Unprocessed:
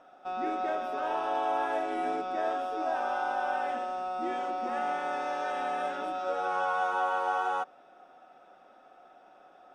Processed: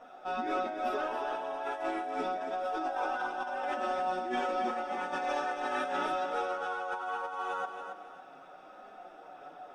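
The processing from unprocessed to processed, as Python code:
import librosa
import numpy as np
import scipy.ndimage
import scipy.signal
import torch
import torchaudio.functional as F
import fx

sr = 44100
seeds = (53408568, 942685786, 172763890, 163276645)

y = fx.chorus_voices(x, sr, voices=6, hz=0.22, base_ms=15, depth_ms=4.8, mix_pct=55)
y = fx.over_compress(y, sr, threshold_db=-39.0, ratio=-1.0)
y = fx.echo_feedback(y, sr, ms=275, feedback_pct=30, wet_db=-7.5)
y = y * librosa.db_to_amplitude(4.0)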